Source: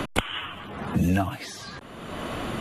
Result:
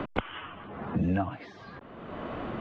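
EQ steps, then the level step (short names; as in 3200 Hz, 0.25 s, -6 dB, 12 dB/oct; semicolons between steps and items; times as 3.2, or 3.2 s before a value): air absorption 65 m; tape spacing loss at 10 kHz 37 dB; low shelf 210 Hz -7 dB; 0.0 dB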